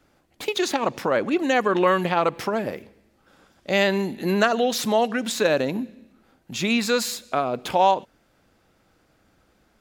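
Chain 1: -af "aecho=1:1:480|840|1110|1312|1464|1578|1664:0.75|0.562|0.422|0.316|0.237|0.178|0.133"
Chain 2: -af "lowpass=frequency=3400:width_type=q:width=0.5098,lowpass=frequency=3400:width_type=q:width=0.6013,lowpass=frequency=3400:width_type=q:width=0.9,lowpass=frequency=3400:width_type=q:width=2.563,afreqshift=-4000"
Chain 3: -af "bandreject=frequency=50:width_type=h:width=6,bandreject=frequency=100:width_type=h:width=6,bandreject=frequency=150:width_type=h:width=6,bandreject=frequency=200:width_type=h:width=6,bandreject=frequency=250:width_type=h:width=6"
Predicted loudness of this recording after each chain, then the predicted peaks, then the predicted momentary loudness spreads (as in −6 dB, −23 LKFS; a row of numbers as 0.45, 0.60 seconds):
−20.5, −20.0, −23.0 LKFS; −3.0, −5.5, −5.0 dBFS; 7, 10, 8 LU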